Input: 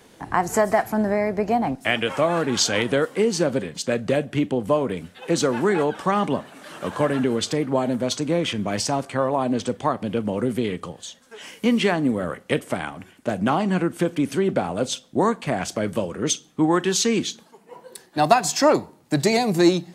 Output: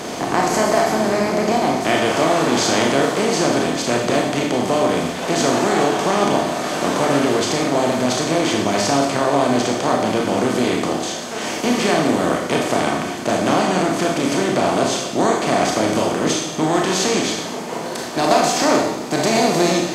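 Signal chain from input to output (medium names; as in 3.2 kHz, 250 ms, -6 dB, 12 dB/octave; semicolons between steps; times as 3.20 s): spectral levelling over time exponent 0.4; Schroeder reverb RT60 0.79 s, combs from 25 ms, DRR 0 dB; trim -6 dB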